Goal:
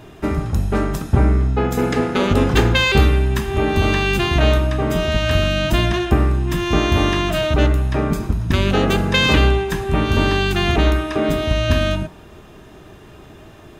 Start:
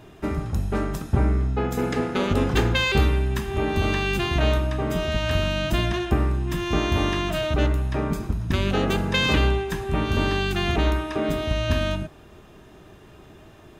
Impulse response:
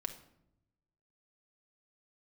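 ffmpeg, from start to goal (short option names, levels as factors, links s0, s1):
-af "bandreject=f=186.6:t=h:w=4,bandreject=f=373.2:t=h:w=4,bandreject=f=559.8:t=h:w=4,bandreject=f=746.4:t=h:w=4,bandreject=f=933:t=h:w=4,volume=2"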